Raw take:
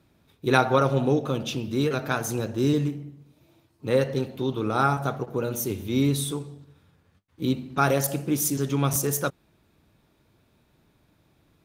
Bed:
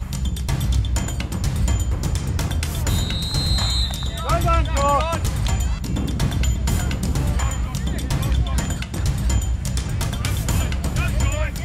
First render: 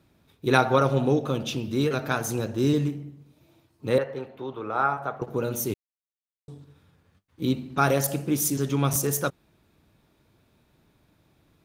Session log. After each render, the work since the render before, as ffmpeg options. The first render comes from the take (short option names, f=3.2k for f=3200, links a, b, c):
-filter_complex "[0:a]asettb=1/sr,asplit=3[a][b][c];[a]atrim=end=3.984[d];[b]atrim=start=3.98:end=5.22,asetpts=PTS-STARTPTS,afade=t=in:d=0.004:c=qsin,afade=t=out:st=1.236:d=0.004:c=qsin,acrossover=split=460 2400:gain=0.224 1 0.126[e][f][g];[e][f][g]amix=inputs=3:normalize=0[h];[c]atrim=start=5.216[i];[d][h]acrossfade=d=0.004:c1=hsin:c2=qsin[j];[j][i]acrossfade=d=0.004:c1=qsin:c2=hsin,asplit=3[k][l][m];[k]atrim=end=5.74,asetpts=PTS-STARTPTS,afade=t=out:st=5.736:d=0.004:c=hsin[n];[l]atrim=start=5.74:end=6.48,asetpts=PTS-STARTPTS,volume=0[o];[m]atrim=start=6.48,asetpts=PTS-STARTPTS,afade=t=in:d=0.004:c=hsin[p];[n][o][p]concat=n=3:v=0:a=1"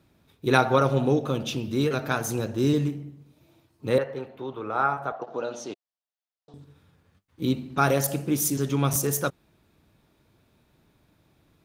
-filter_complex "[0:a]asettb=1/sr,asplit=3[a][b][c];[a]atrim=end=5.124[d];[b]atrim=start=5.12:end=6.54,asetpts=PTS-STARTPTS,afade=t=in:d=0.004:c=qsin,afade=t=out:st=1.416:d=0.004:c=qsin,highpass=370,equalizer=f=400:t=q:w=4:g=-6,equalizer=f=690:t=q:w=4:g=8,equalizer=f=2.2k:t=q:w=4:g=-7,lowpass=f=5.5k:w=0.5412,lowpass=f=5.5k:w=1.3066[e];[c]atrim=start=6.536[f];[d][e]acrossfade=d=0.004:c1=hsin:c2=qsin[g];[g][f]acrossfade=d=0.004:c1=qsin:c2=hsin"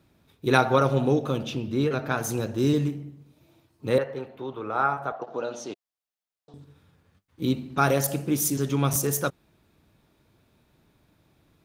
-filter_complex "[0:a]asettb=1/sr,asplit=3[a][b][c];[a]atrim=end=1.454[d];[b]atrim=start=1.45:end=2.18,asetpts=PTS-STARTPTS,afade=t=in:d=0.004:c=qsin,afade=t=out:st=0.726:d=0.004:c=qsin,highshelf=f=4.7k:g=-10.5[e];[c]atrim=start=2.176[f];[d][e]acrossfade=d=0.004:c1=hsin:c2=qsin[g];[g][f]acrossfade=d=0.004:c1=qsin:c2=hsin"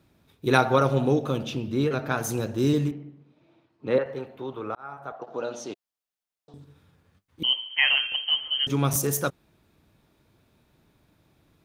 -filter_complex "[0:a]asettb=1/sr,asplit=3[a][b][c];[a]atrim=end=2.914[d];[b]atrim=start=2.91:end=4.06,asetpts=PTS-STARTPTS,afade=t=in:d=0.004:c=qsin,afade=t=out:st=1.146:d=0.004:c=qsin,highpass=170,lowpass=3k[e];[c]atrim=start=4.056[f];[d][e]acrossfade=d=0.004:c1=hsin:c2=qsin[g];[g][f]acrossfade=d=0.004:c1=qsin:c2=hsin,asettb=1/sr,asplit=3[h][i][j];[h]atrim=end=7.434[k];[i]atrim=start=7.43:end=8.67,asetpts=PTS-STARTPTS,afade=t=in:d=0.004:c=qsin,afade=t=out:st=1.236:d=0.004:c=qsin,lowpass=f=2.8k:t=q:w=0.5098,lowpass=f=2.8k:t=q:w=0.6013,lowpass=f=2.8k:t=q:w=0.9,lowpass=f=2.8k:t=q:w=2.563,afreqshift=-3300[l];[j]atrim=start=8.666[m];[k][l]acrossfade=d=0.004:c1=hsin:c2=qsin[n];[n][m]acrossfade=d=0.004:c1=qsin:c2=hsin,asplit=2[o][p];[o]atrim=end=4.75,asetpts=PTS-STARTPTS,afade=t=out:st=4.746:d=0.004:c=hsin[q];[p]atrim=start=4.75,asetpts=PTS-STARTPTS,afade=t=in:d=0.7[r];[q][r]concat=n=2:v=0:a=1"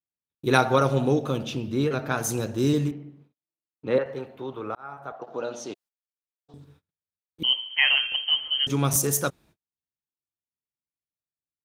-af "agate=range=-44dB:threshold=-54dB:ratio=16:detection=peak,adynamicequalizer=threshold=0.00794:dfrequency=7700:dqfactor=0.8:tfrequency=7700:tqfactor=0.8:attack=5:release=100:ratio=0.375:range=2.5:mode=boostabove:tftype=bell"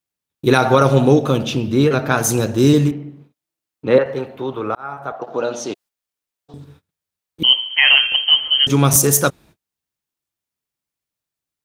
-af "alimiter=level_in=10dB:limit=-1dB:release=50:level=0:latency=1"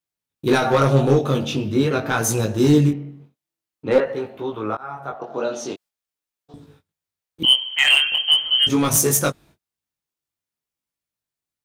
-af "asoftclip=type=hard:threshold=-6.5dB,flanger=delay=18:depth=3.8:speed=0.46"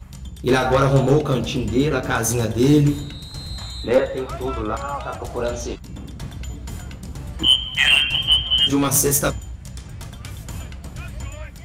-filter_complex "[1:a]volume=-11.5dB[a];[0:a][a]amix=inputs=2:normalize=0"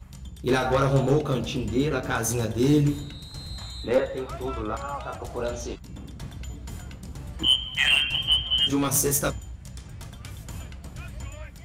-af "volume=-5.5dB"